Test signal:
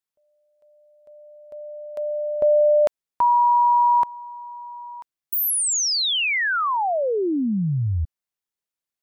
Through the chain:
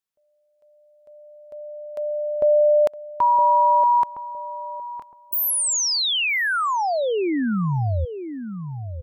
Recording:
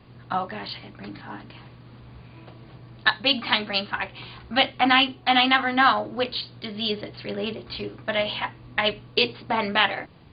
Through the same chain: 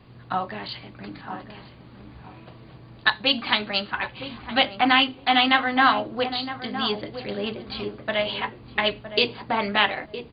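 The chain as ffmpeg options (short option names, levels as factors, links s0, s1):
-filter_complex "[0:a]asplit=2[s0][s1];[s1]adelay=963,lowpass=f=1000:p=1,volume=0.355,asplit=2[s2][s3];[s3]adelay=963,lowpass=f=1000:p=1,volume=0.25,asplit=2[s4][s5];[s5]adelay=963,lowpass=f=1000:p=1,volume=0.25[s6];[s0][s2][s4][s6]amix=inputs=4:normalize=0"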